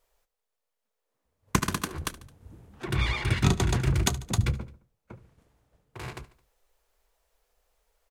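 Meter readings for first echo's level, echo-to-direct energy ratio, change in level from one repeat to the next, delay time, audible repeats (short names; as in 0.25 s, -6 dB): -18.5 dB, -17.0 dB, -5.0 dB, 72 ms, 3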